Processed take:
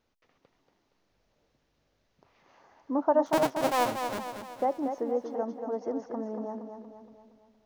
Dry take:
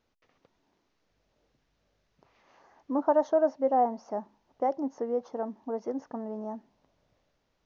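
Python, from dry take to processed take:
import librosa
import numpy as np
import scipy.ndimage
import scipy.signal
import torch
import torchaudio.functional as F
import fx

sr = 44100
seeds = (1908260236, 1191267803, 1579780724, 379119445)

y = fx.cycle_switch(x, sr, every=2, mode='muted', at=(3.26, 4.19))
y = fx.echo_feedback(y, sr, ms=234, feedback_pct=50, wet_db=-7)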